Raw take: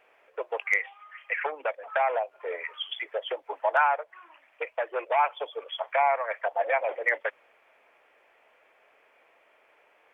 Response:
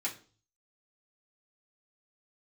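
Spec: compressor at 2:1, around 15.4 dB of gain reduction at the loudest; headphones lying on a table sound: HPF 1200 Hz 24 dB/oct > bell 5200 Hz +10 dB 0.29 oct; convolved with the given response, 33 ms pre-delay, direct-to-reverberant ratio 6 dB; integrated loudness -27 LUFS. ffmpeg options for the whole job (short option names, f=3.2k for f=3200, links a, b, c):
-filter_complex "[0:a]acompressor=threshold=-48dB:ratio=2,asplit=2[a][b];[1:a]atrim=start_sample=2205,adelay=33[c];[b][c]afir=irnorm=-1:irlink=0,volume=-9.5dB[d];[a][d]amix=inputs=2:normalize=0,highpass=f=1.2k:w=0.5412,highpass=f=1.2k:w=1.3066,equalizer=f=5.2k:t=o:w=0.29:g=10,volume=17.5dB"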